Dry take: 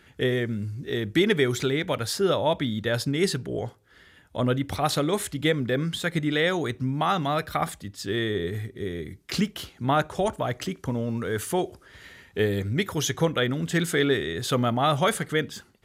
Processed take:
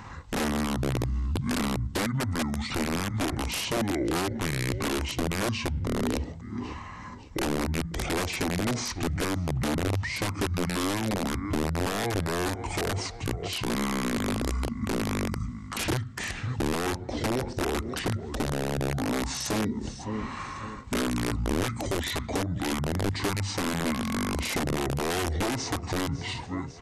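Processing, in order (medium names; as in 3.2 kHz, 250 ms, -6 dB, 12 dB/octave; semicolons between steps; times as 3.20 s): in parallel at -2 dB: level held to a coarse grid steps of 19 dB; on the sum: peaking EQ 170 Hz +6 dB 0.79 oct; on a send: feedback delay 326 ms, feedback 37%, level -22 dB; on the sum: compression 16:1, threshold -25 dBFS, peak gain reduction 16 dB; integer overflow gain 23 dB; peak limiter -31.5 dBFS, peak gain reduction 8.5 dB; wide varispeed 0.591×; dynamic bell 300 Hz, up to +5 dB, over -50 dBFS, Q 0.83; trim +7.5 dB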